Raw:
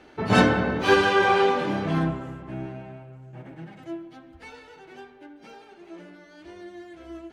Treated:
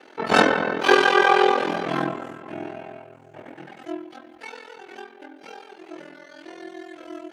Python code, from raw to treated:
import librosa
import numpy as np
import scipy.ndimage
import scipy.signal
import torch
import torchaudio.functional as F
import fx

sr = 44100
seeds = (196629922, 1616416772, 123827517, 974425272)

p1 = scipy.signal.sosfilt(scipy.signal.butter(2, 350.0, 'highpass', fs=sr, output='sos'), x)
p2 = fx.rider(p1, sr, range_db=4, speed_s=2.0)
p3 = p1 + (p2 * 10.0 ** (-1.0 / 20.0))
p4 = p3 * np.sin(2.0 * np.pi * 21.0 * np.arange(len(p3)) / sr)
y = p4 * 10.0 ** (1.0 / 20.0)